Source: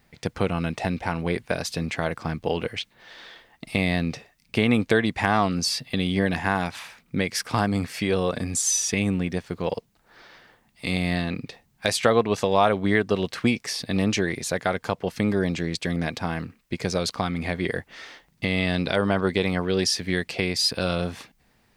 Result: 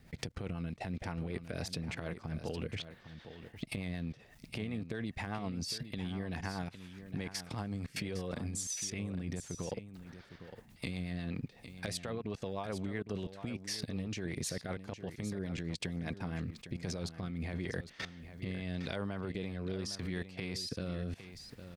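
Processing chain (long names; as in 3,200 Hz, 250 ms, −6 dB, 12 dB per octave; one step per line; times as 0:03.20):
downward compressor 20 to 1, threshold −36 dBFS, peak gain reduction 23 dB
transient designer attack +1 dB, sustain +5 dB
parametric band 84 Hz +7 dB 2.8 octaves
output level in coarse steps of 21 dB
rotating-speaker cabinet horn 8 Hz, later 0.8 Hz, at 0:16.10
on a send: single-tap delay 808 ms −11.5 dB
on the sum: level +5.5 dB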